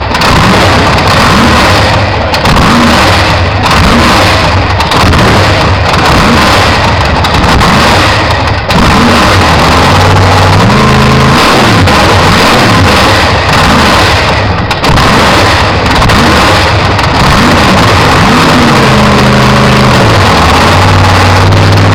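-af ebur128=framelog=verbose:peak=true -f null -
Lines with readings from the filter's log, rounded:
Integrated loudness:
  I:          -4.3 LUFS
  Threshold: -14.3 LUFS
Loudness range:
  LRA:         1.3 LU
  Threshold: -24.3 LUFS
  LRA low:    -4.9 LUFS
  LRA high:   -3.7 LUFS
True peak:
  Peak:       -1.7 dBFS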